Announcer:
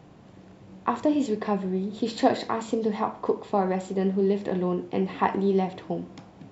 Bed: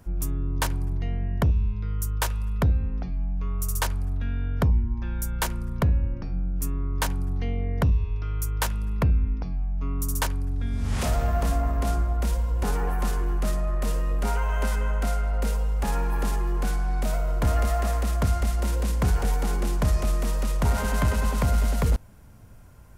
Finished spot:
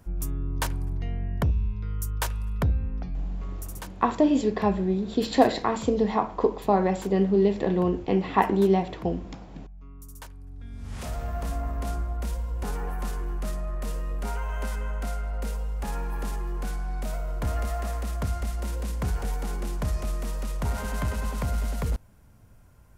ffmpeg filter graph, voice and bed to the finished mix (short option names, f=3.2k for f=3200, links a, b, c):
-filter_complex "[0:a]adelay=3150,volume=2.5dB[a];[1:a]volume=9.5dB,afade=t=out:st=3.17:d=0.76:silence=0.177828,afade=t=in:st=10.33:d=1.37:silence=0.251189[b];[a][b]amix=inputs=2:normalize=0"